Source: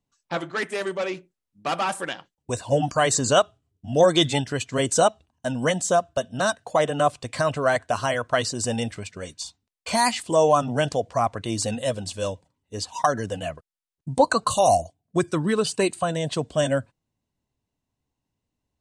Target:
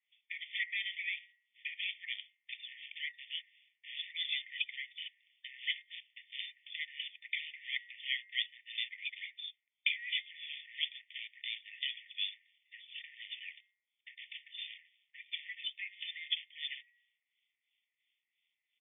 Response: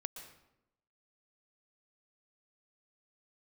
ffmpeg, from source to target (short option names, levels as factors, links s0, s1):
-filter_complex "[0:a]aemphasis=mode=production:type=50fm,aecho=1:1:0.9:0.63,bandreject=f=192:t=h:w=4,bandreject=f=384:t=h:w=4,bandreject=f=576:t=h:w=4,bandreject=f=768:t=h:w=4,bandreject=f=960:t=h:w=4,bandreject=f=1152:t=h:w=4,bandreject=f=1344:t=h:w=4,bandreject=f=1536:t=h:w=4,bandreject=f=1728:t=h:w=4,bandreject=f=1920:t=h:w=4,bandreject=f=2112:t=h:w=4,alimiter=limit=0.266:level=0:latency=1:release=22,acompressor=threshold=0.0178:ratio=12,aresample=8000,acrusher=bits=3:mode=log:mix=0:aa=0.000001,aresample=44100,acrossover=split=1900[s0][s1];[s0]aeval=exprs='val(0)*(1-1/2+1/2*cos(2*PI*2.9*n/s))':c=same[s2];[s1]aeval=exprs='val(0)*(1-1/2-1/2*cos(2*PI*2.9*n/s))':c=same[s3];[s2][s3]amix=inputs=2:normalize=0,afftfilt=real='re*eq(mod(floor(b*sr/1024/1800),2),1)':imag='im*eq(mod(floor(b*sr/1024/1800),2),1)':win_size=1024:overlap=0.75,volume=4.73"